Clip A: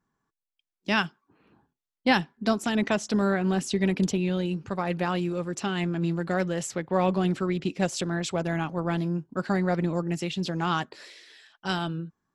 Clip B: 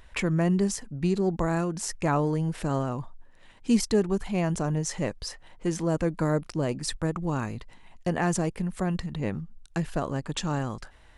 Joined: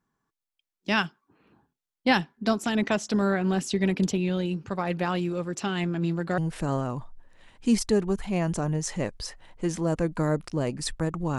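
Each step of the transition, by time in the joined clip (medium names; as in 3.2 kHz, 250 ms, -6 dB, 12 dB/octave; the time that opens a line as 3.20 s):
clip A
6.38 s: go over to clip B from 2.40 s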